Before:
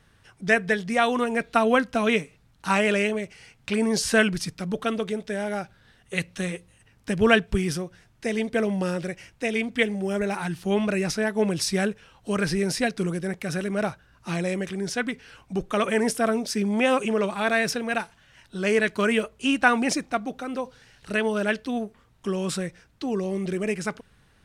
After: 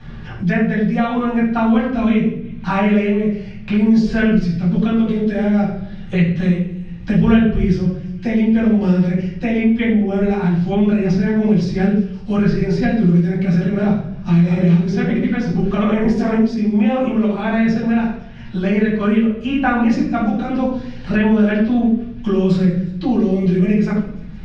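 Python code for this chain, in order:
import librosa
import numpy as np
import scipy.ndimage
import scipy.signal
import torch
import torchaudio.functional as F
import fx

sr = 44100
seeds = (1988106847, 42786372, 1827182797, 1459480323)

y = fx.reverse_delay(x, sr, ms=325, wet_db=-1, at=(13.87, 16.35))
y = scipy.signal.sosfilt(scipy.signal.butter(4, 5000.0, 'lowpass', fs=sr, output='sos'), y)
y = fx.low_shelf(y, sr, hz=150.0, db=6.0)
y = fx.hum_notches(y, sr, base_hz=50, count=4)
y = fx.echo_wet_highpass(y, sr, ms=170, feedback_pct=59, hz=2000.0, wet_db=-23)
y = fx.room_shoebox(y, sr, seeds[0], volume_m3=760.0, walls='furnished', distance_m=8.3)
y = fx.rider(y, sr, range_db=10, speed_s=2.0)
y = fx.low_shelf(y, sr, hz=350.0, db=11.0)
y = fx.band_squash(y, sr, depth_pct=70)
y = F.gain(torch.from_numpy(y), -12.5).numpy()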